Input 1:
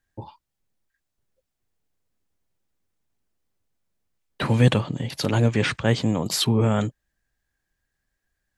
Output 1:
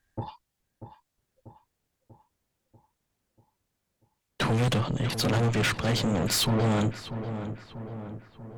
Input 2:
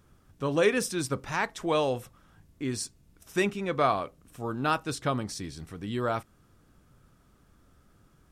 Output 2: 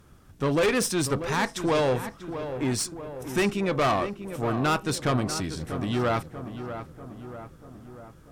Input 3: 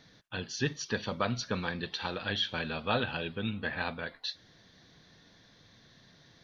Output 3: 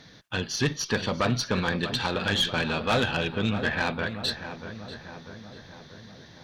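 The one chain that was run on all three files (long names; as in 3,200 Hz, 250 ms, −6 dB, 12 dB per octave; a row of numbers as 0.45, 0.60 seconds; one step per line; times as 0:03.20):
tube saturation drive 27 dB, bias 0.4
on a send: feedback echo with a low-pass in the loop 640 ms, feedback 59%, low-pass 2,000 Hz, level −10 dB
on the sum: loudness normalisation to −27 LKFS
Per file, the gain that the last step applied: +5.0, +8.0, +9.5 decibels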